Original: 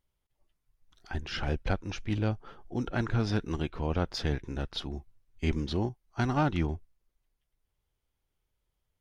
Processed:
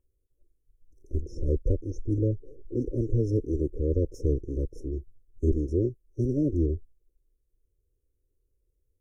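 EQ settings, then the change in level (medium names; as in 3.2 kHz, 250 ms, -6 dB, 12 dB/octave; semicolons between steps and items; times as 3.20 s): brick-wall FIR band-stop 620–5200 Hz; treble shelf 4.1 kHz -9.5 dB; static phaser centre 950 Hz, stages 8; +8.0 dB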